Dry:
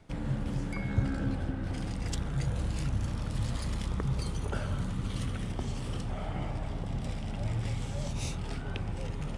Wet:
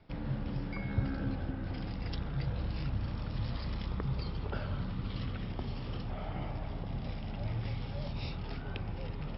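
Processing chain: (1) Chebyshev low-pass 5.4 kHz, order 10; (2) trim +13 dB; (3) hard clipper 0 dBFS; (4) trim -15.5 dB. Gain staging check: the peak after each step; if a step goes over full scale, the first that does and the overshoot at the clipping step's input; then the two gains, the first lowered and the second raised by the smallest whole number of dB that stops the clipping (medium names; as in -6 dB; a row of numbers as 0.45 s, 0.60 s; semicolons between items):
-16.0 dBFS, -3.0 dBFS, -3.0 dBFS, -18.5 dBFS; nothing clips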